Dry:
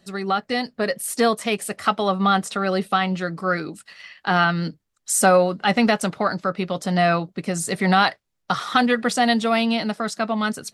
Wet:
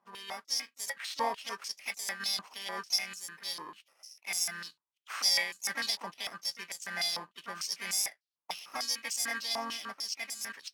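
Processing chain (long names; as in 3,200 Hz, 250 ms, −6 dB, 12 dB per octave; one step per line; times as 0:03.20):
samples in bit-reversed order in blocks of 32 samples
dynamic equaliser 5,300 Hz, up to +6 dB, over −45 dBFS, Q 3.6
noise that follows the level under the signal 21 dB
pitch-shifted copies added +3 semitones −10 dB
band-pass on a step sequencer 6.7 Hz 990–7,200 Hz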